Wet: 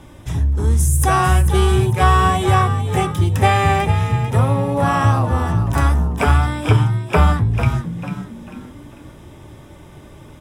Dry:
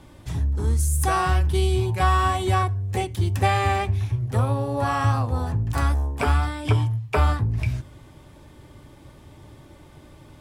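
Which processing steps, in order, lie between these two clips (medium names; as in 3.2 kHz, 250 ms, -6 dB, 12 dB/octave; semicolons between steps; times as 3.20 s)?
band-stop 4.4 kHz, Q 5.1; on a send: frequency-shifting echo 445 ms, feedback 36%, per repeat +60 Hz, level -10 dB; on the sum: trim +6 dB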